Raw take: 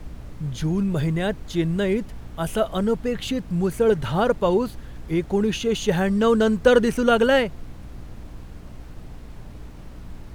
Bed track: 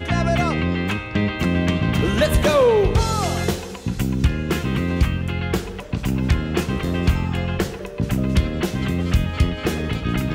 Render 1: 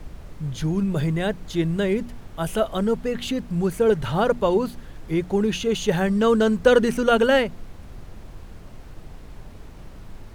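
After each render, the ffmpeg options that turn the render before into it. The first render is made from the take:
-af "bandreject=f=60:t=h:w=4,bandreject=f=120:t=h:w=4,bandreject=f=180:t=h:w=4,bandreject=f=240:t=h:w=4,bandreject=f=300:t=h:w=4"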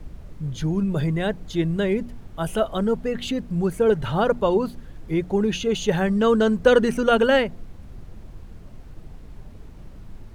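-af "afftdn=nr=6:nf=-42"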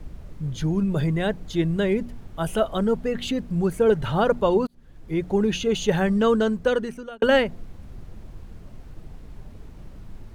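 -filter_complex "[0:a]asplit=3[s0][s1][s2];[s0]atrim=end=4.67,asetpts=PTS-STARTPTS,afade=t=out:st=4.666:d=0.004:c=hsin[s3];[s1]atrim=start=4.67:end=7.22,asetpts=PTS-STARTPTS,afade=t=in:d=0.63,afade=t=out:st=1.49:d=1.06[s4];[s2]atrim=start=7.22,asetpts=PTS-STARTPTS,afade=t=in:d=0.004:c=hsin[s5];[s3][s4][s5]concat=n=3:v=0:a=1"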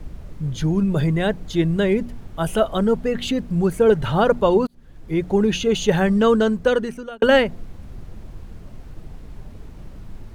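-af "volume=1.5"

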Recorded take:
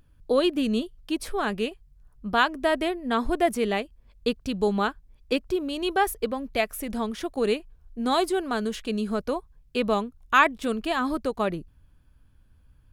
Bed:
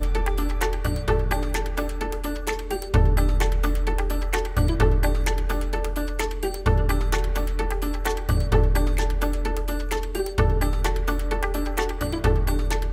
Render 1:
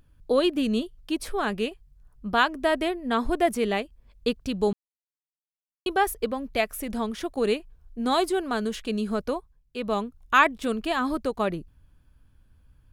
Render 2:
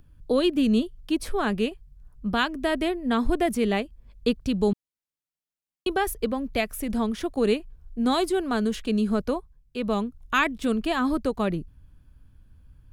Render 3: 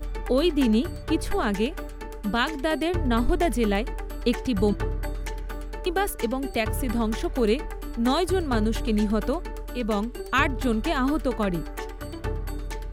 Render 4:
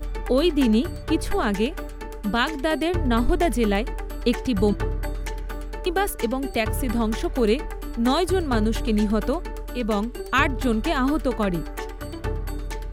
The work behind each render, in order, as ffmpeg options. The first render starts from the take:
-filter_complex "[0:a]asplit=5[s0][s1][s2][s3][s4];[s0]atrim=end=4.73,asetpts=PTS-STARTPTS,afade=t=out:st=4.726:d=0.004:c=hsin[s5];[s1]atrim=start=4.73:end=5.86,asetpts=PTS-STARTPTS,volume=0[s6];[s2]atrim=start=5.86:end=9.61,asetpts=PTS-STARTPTS,afade=t=in:d=0.004:c=hsin,afade=t=out:st=3.43:d=0.32:silence=0.334965[s7];[s3]atrim=start=9.61:end=9.73,asetpts=PTS-STARTPTS,volume=0.335[s8];[s4]atrim=start=9.73,asetpts=PTS-STARTPTS,afade=t=in:d=0.32:silence=0.334965[s9];[s5][s6][s7][s8][s9]concat=n=5:v=0:a=1"
-filter_complex "[0:a]acrossover=split=310|1700|3500[s0][s1][s2][s3];[s0]acontrast=39[s4];[s1]alimiter=limit=0.119:level=0:latency=1:release=356[s5];[s4][s5][s2][s3]amix=inputs=4:normalize=0"
-filter_complex "[1:a]volume=0.335[s0];[0:a][s0]amix=inputs=2:normalize=0"
-af "volume=1.26"

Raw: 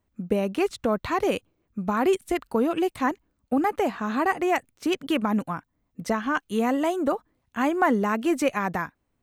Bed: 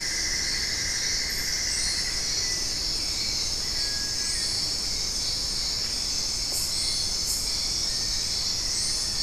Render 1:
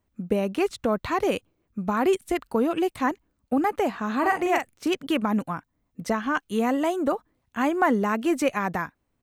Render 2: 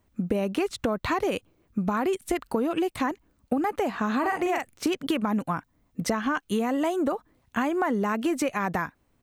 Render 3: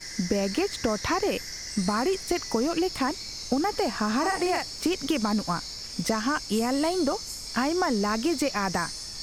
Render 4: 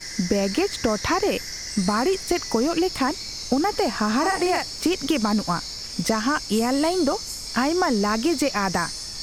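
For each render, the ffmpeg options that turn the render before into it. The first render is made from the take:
-filter_complex "[0:a]asplit=3[s0][s1][s2];[s0]afade=t=out:st=4.22:d=0.02[s3];[s1]asplit=2[s4][s5];[s5]adelay=43,volume=0.531[s6];[s4][s6]amix=inputs=2:normalize=0,afade=t=in:st=4.22:d=0.02,afade=t=out:st=4.87:d=0.02[s7];[s2]afade=t=in:st=4.87:d=0.02[s8];[s3][s7][s8]amix=inputs=3:normalize=0"
-filter_complex "[0:a]asplit=2[s0][s1];[s1]alimiter=limit=0.133:level=0:latency=1:release=33,volume=1.19[s2];[s0][s2]amix=inputs=2:normalize=0,acompressor=threshold=0.0708:ratio=6"
-filter_complex "[1:a]volume=0.316[s0];[0:a][s0]amix=inputs=2:normalize=0"
-af "volume=1.58"

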